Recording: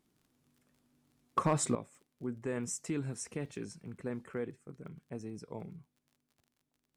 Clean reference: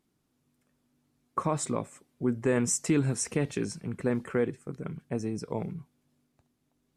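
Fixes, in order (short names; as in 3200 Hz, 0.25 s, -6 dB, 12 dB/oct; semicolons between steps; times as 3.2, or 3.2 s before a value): clip repair -20 dBFS; de-click; gain correction +10.5 dB, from 1.75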